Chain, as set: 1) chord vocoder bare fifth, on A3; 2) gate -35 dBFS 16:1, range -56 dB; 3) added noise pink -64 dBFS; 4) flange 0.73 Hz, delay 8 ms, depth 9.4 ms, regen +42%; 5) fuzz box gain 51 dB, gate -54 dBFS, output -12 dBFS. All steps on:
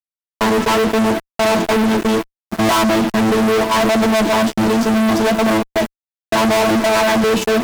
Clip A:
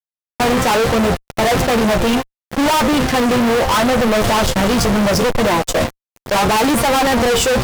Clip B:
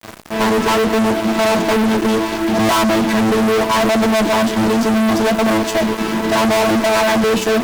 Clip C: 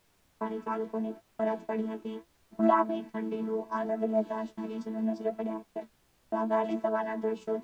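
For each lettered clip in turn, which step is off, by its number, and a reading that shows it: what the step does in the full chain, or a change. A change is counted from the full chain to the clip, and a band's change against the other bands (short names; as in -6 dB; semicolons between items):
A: 1, 250 Hz band -3.0 dB; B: 2, momentary loudness spread change -2 LU; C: 5, distortion -1 dB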